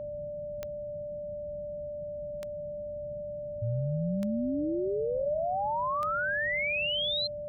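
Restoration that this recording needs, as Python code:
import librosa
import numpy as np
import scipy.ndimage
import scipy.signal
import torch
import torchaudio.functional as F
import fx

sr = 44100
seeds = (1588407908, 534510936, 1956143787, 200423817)

y = fx.fix_declick_ar(x, sr, threshold=10.0)
y = fx.notch(y, sr, hz=590.0, q=30.0)
y = fx.noise_reduce(y, sr, print_start_s=0.77, print_end_s=1.27, reduce_db=30.0)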